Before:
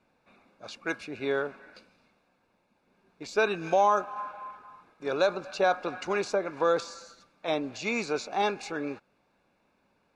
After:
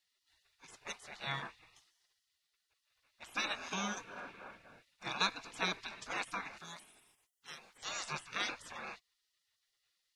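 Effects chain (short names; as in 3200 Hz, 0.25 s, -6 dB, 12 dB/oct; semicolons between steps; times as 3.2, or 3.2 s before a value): 6.58–7.83 pre-emphasis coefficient 0.8; spectral gate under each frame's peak -20 dB weak; gain +3.5 dB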